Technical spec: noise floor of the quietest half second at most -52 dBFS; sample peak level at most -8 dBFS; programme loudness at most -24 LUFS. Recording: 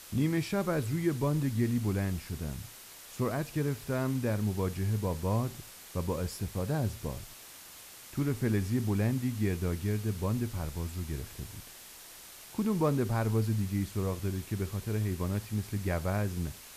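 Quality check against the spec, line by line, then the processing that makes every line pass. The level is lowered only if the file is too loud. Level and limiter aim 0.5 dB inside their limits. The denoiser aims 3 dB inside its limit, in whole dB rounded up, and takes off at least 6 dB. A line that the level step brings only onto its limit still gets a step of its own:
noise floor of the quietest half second -50 dBFS: fail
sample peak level -15.0 dBFS: OK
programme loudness -32.5 LUFS: OK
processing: denoiser 6 dB, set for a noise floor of -50 dBFS

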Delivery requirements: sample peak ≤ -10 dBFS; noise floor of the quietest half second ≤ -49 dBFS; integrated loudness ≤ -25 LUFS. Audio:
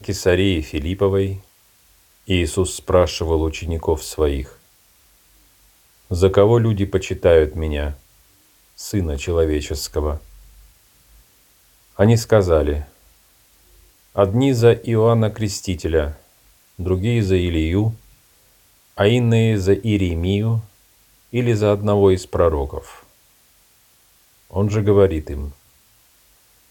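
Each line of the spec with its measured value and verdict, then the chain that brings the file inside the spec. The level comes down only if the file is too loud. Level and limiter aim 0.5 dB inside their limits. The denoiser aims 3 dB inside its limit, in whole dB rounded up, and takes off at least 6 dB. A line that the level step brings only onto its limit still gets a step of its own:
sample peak -2.0 dBFS: fail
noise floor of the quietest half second -55 dBFS: OK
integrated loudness -19.0 LUFS: fail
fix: gain -6.5 dB; limiter -10.5 dBFS

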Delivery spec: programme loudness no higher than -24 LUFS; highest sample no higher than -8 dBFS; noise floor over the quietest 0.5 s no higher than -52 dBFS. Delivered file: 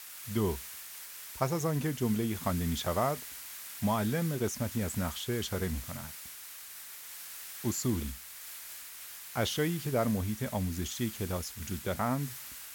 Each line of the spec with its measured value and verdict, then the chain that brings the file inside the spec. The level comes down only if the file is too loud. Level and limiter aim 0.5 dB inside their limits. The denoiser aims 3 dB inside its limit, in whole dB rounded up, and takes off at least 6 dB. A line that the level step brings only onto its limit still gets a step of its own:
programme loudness -34.0 LUFS: OK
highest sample -14.0 dBFS: OK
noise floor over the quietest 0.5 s -47 dBFS: fail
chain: denoiser 8 dB, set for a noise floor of -47 dBFS

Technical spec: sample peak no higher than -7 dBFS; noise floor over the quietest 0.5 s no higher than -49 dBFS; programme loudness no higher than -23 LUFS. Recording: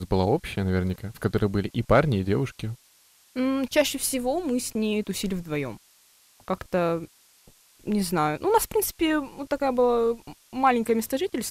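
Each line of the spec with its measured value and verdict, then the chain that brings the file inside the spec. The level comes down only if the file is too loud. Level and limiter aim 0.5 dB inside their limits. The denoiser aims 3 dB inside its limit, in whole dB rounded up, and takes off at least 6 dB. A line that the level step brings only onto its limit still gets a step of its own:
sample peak -8.0 dBFS: OK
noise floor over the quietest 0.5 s -59 dBFS: OK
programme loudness -25.5 LUFS: OK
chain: none

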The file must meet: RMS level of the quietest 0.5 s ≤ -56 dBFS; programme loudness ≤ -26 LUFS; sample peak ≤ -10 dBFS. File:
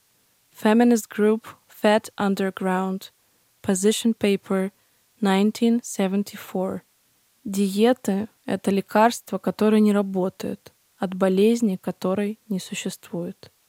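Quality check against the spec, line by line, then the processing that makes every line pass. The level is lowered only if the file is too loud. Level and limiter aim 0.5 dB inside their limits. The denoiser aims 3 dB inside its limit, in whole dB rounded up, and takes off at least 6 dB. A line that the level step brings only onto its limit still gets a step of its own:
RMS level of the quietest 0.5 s -64 dBFS: OK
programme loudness -23.0 LUFS: fail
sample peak -3.5 dBFS: fail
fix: gain -3.5 dB; limiter -10.5 dBFS

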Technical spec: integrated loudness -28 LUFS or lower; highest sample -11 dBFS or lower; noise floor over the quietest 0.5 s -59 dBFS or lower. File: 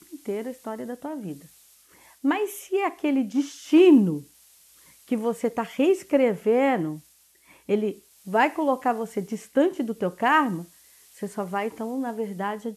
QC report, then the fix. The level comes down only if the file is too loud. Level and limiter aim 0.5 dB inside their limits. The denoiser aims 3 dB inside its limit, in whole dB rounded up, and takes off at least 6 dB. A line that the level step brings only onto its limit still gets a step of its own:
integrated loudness -24.5 LUFS: fail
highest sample -7.0 dBFS: fail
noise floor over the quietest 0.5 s -58 dBFS: fail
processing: gain -4 dB; limiter -11.5 dBFS

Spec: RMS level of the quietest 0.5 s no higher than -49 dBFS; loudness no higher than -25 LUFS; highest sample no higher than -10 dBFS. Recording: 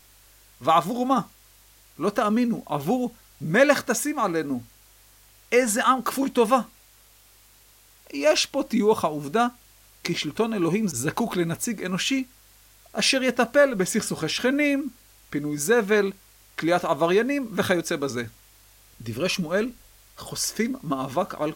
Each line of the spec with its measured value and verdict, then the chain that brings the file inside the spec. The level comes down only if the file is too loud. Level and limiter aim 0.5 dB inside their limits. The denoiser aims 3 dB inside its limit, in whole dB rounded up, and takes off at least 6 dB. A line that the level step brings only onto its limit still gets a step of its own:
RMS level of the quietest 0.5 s -55 dBFS: OK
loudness -24.0 LUFS: fail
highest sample -5.0 dBFS: fail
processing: gain -1.5 dB; limiter -10.5 dBFS

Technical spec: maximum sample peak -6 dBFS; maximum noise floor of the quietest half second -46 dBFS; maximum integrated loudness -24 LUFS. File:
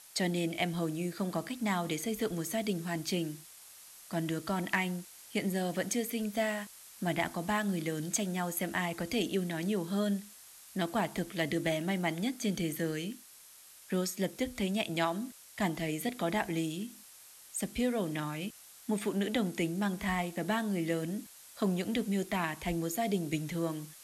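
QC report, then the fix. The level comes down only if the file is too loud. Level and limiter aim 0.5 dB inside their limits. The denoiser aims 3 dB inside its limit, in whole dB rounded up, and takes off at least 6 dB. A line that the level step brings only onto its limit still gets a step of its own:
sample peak -16.5 dBFS: OK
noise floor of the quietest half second -55 dBFS: OK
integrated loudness -34.0 LUFS: OK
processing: none

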